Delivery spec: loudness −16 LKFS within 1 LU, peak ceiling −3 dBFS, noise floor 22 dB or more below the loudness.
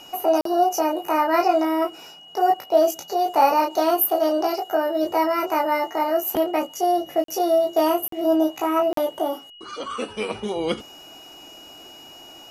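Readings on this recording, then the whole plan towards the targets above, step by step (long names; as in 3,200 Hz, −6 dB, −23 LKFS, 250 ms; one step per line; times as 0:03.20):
number of dropouts 4; longest dropout 43 ms; interfering tone 2,900 Hz; level of the tone −43 dBFS; integrated loudness −22.0 LKFS; sample peak −5.0 dBFS; target loudness −16.0 LKFS
→ repair the gap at 0:00.41/0:07.24/0:08.08/0:08.93, 43 ms
notch filter 2,900 Hz, Q 30
level +6 dB
brickwall limiter −3 dBFS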